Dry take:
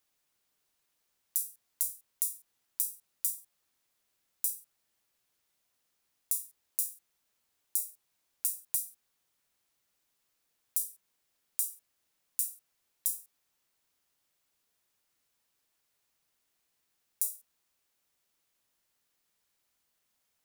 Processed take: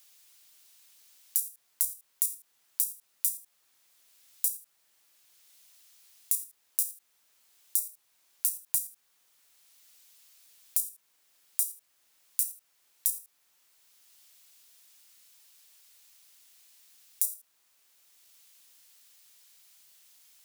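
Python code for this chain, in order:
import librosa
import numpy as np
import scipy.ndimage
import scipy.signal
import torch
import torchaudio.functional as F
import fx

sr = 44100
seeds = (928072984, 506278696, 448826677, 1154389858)

p1 = fx.level_steps(x, sr, step_db=16)
p2 = x + F.gain(torch.from_numpy(p1), 2.0).numpy()
p3 = fx.low_shelf(p2, sr, hz=430.0, db=-9.0)
p4 = fx.band_squash(p3, sr, depth_pct=40)
y = F.gain(torch.from_numpy(p4), 1.0).numpy()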